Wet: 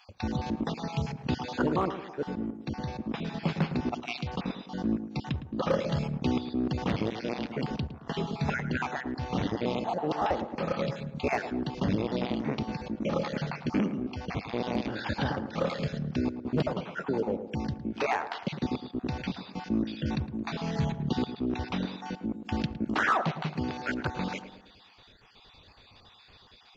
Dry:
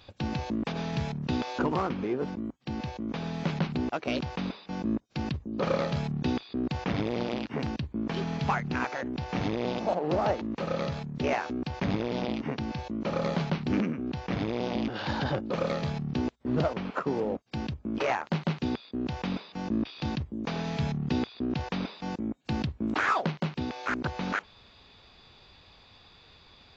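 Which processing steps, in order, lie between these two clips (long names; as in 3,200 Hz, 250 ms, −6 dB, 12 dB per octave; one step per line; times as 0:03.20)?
time-frequency cells dropped at random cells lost 32%
tape delay 108 ms, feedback 56%, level −8.5 dB, low-pass 1,200 Hz
hard clipping −18.5 dBFS, distortion −32 dB
level +1 dB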